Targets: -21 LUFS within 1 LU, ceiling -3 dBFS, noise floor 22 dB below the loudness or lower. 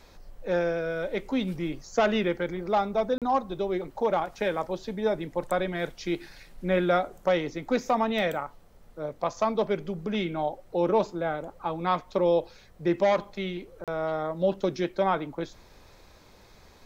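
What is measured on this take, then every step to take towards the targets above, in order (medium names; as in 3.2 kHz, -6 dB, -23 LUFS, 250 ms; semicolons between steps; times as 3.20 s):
dropouts 2; longest dropout 37 ms; loudness -28.5 LUFS; peak level -12.0 dBFS; loudness target -21.0 LUFS
-> interpolate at 3.18/13.84 s, 37 ms; trim +7.5 dB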